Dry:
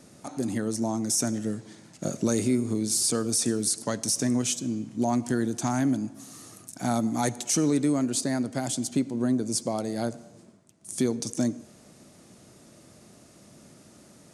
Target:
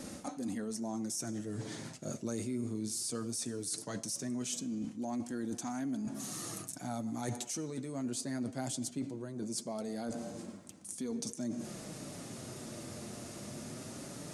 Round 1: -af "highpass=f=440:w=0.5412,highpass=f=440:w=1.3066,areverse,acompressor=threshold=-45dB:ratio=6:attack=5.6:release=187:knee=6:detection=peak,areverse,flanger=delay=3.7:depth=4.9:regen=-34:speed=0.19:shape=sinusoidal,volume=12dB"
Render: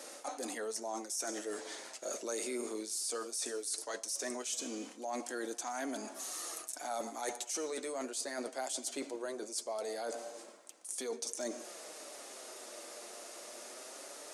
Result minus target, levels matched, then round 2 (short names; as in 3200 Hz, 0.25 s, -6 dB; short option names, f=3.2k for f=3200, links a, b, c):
500 Hz band +4.0 dB
-af "areverse,acompressor=threshold=-45dB:ratio=6:attack=5.6:release=187:knee=6:detection=peak,areverse,flanger=delay=3.7:depth=4.9:regen=-34:speed=0.19:shape=sinusoidal,volume=12dB"